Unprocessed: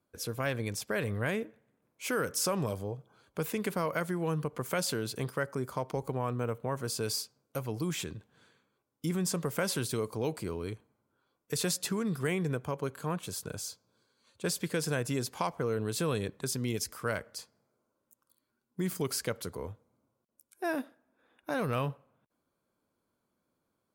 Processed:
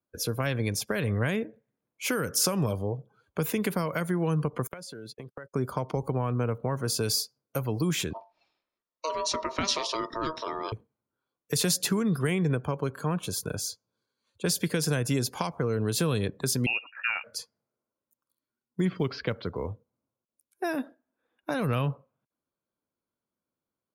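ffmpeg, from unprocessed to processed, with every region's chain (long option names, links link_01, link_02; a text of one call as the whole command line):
ffmpeg -i in.wav -filter_complex "[0:a]asettb=1/sr,asplit=3[link_01][link_02][link_03];[link_01]atrim=end=4.674[link_04];[link_02]atrim=start=4.67:end=5.54,asetpts=PTS-STARTPTS,afade=type=in:duration=0.004:curve=qsin,afade=type=out:start_time=0.866:duration=0.004:curve=qsin,highpass=frequency=110:poles=1,agate=range=-44dB:threshold=-39dB:ratio=16:release=100:detection=peak,acompressor=threshold=-43dB:ratio=20:attack=3.2:release=140:knee=1:detection=peak[link_05];[link_03]atrim=start=5.536[link_06];[link_04][link_05]acrossfade=duration=0.004:curve1=hsin:curve2=qsin[link_07];[link_07][link_06]acrossfade=duration=0.004:curve1=qsin:curve2=hsin,asettb=1/sr,asplit=3[link_08][link_09][link_10];[link_08]atrim=end=8.134[link_11];[link_09]atrim=start=8.13:end=10.72,asetpts=PTS-STARTPTS,afade=type=in:duration=0.004:curve=qsin,afade=type=out:start_time=2.586:duration=0.004:curve=qsin,lowpass=frequency=4700:width_type=q:width=2.4,bandreject=frequency=50:width_type=h:width=6,bandreject=frequency=100:width_type=h:width=6,bandreject=frequency=150:width_type=h:width=6,bandreject=frequency=200:width_type=h:width=6,bandreject=frequency=250:width_type=h:width=6,bandreject=frequency=300:width_type=h:width=6,bandreject=frequency=350:width_type=h:width=6,bandreject=frequency=400:width_type=h:width=6,aeval=exprs='val(0)*sin(2*PI*790*n/s)':channel_layout=same[link_12];[link_10]atrim=start=10.716[link_13];[link_11][link_12]acrossfade=duration=0.004:curve1=hsin:curve2=qsin[link_14];[link_14][link_13]acrossfade=duration=0.004:curve1=qsin:curve2=hsin,asettb=1/sr,asplit=3[link_15][link_16][link_17];[link_15]atrim=end=16.664[link_18];[link_16]atrim=start=16.66:end=17.24,asetpts=PTS-STARTPTS,afade=type=in:duration=0.004:curve=qsin,afade=type=out:start_time=0.576:duration=0.004:curve=qsin,agate=range=-33dB:threshold=-46dB:ratio=3:release=100:detection=peak,lowshelf=frequency=160:gain=-5,lowpass=frequency=2500:width_type=q:width=0.5098,lowpass=frequency=2500:width_type=q:width=0.6013,lowpass=frequency=2500:width_type=q:width=0.9,lowpass=frequency=2500:width_type=q:width=2.563,afreqshift=-2900[link_19];[link_17]atrim=start=17.236[link_20];[link_18][link_19]acrossfade=duration=0.004:curve1=hsin:curve2=qsin[link_21];[link_21][link_20]acrossfade=duration=0.004:curve1=qsin:curve2=hsin,asettb=1/sr,asplit=3[link_22][link_23][link_24];[link_22]atrim=end=18.854[link_25];[link_23]atrim=start=18.85:end=19.66,asetpts=PTS-STARTPTS,afade=type=in:duration=0.004:curve=qsin,afade=type=out:start_time=0.806:duration=0.004:curve=qsin,lowpass=frequency=3800:width=0.5412,lowpass=frequency=3800:width=1.3066,acrusher=bits=7:mode=log:mix=0:aa=0.000001[link_26];[link_24]atrim=start=19.656[link_27];[link_25][link_26]acrossfade=duration=0.004:curve1=hsin:curve2=qsin[link_28];[link_28][link_27]acrossfade=duration=0.004:curve1=qsin:curve2=hsin,bandreject=frequency=8000:width=8.4,afftdn=noise_reduction=17:noise_floor=-54,acrossover=split=240|3000[link_29][link_30][link_31];[link_30]acompressor=threshold=-35dB:ratio=6[link_32];[link_29][link_32][link_31]amix=inputs=3:normalize=0,volume=7dB" out.wav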